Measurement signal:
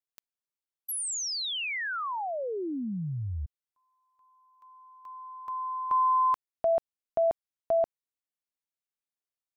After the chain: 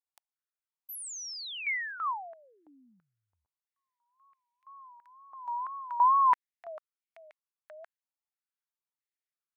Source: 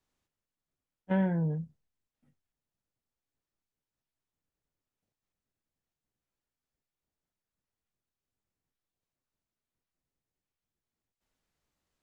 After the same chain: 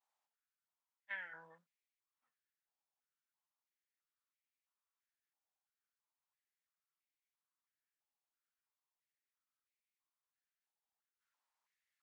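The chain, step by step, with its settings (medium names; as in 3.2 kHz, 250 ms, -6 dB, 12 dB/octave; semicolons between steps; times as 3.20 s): wow and flutter 130 cents; step-sequenced high-pass 3 Hz 810–2200 Hz; trim -8.5 dB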